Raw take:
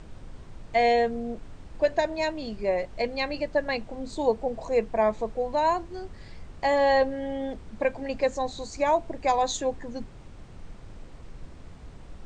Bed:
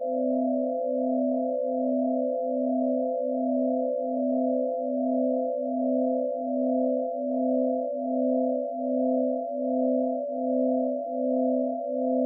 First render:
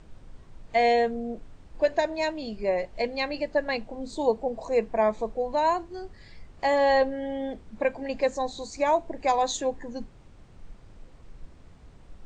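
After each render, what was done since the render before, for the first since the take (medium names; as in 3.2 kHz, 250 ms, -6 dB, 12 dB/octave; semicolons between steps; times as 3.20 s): noise print and reduce 6 dB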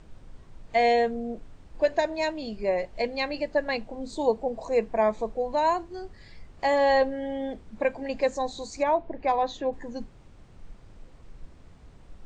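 8.83–9.73 s: distance through air 250 m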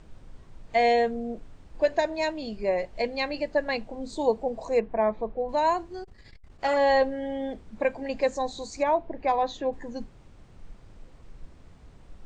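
4.80–5.49 s: distance through air 370 m; 6.03–6.77 s: transformer saturation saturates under 860 Hz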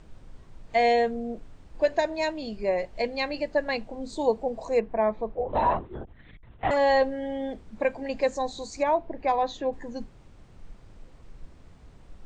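5.35–6.71 s: LPC vocoder at 8 kHz whisper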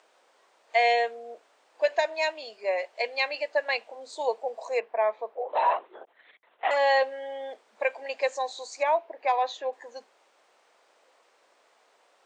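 high-pass 520 Hz 24 dB/octave; dynamic bell 2.6 kHz, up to +6 dB, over -45 dBFS, Q 1.6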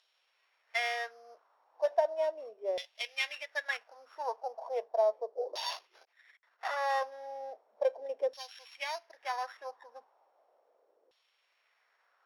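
sorted samples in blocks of 8 samples; LFO band-pass saw down 0.36 Hz 390–3400 Hz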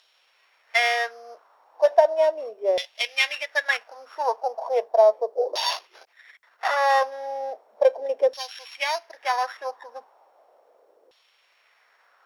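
trim +11.5 dB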